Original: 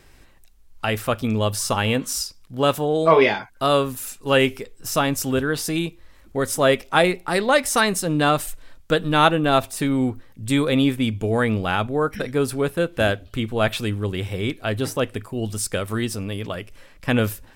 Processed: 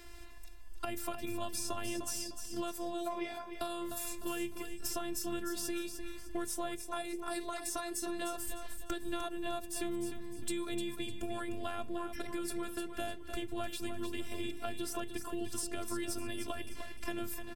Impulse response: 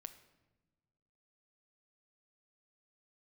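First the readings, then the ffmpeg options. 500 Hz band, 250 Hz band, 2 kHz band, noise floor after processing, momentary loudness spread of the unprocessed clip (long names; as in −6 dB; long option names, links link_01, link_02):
−19.5 dB, −16.0 dB, −20.5 dB, −45 dBFS, 10 LU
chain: -filter_complex "[0:a]bandreject=frequency=60:width_type=h:width=6,bandreject=frequency=120:width_type=h:width=6,bandreject=frequency=180:width_type=h:width=6,bandreject=frequency=240:width_type=h:width=6,bandreject=frequency=300:width_type=h:width=6,bandreject=frequency=360:width_type=h:width=6,bandreject=frequency=420:width_type=h:width=6,acompressor=threshold=-30dB:ratio=4,afftfilt=real='hypot(re,im)*cos(PI*b)':imag='0':win_size=512:overlap=0.75,acrossover=split=240|950|5400[link_01][link_02][link_03][link_04];[link_01]acompressor=threshold=-42dB:ratio=4[link_05];[link_02]acompressor=threshold=-44dB:ratio=4[link_06];[link_03]acompressor=threshold=-50dB:ratio=4[link_07];[link_04]acompressor=threshold=-41dB:ratio=4[link_08];[link_05][link_06][link_07][link_08]amix=inputs=4:normalize=0,asplit=2[link_09][link_10];[link_10]aecho=0:1:303|606|909|1212:0.398|0.143|0.0516|0.0186[link_11];[link_09][link_11]amix=inputs=2:normalize=0,volume=3.5dB"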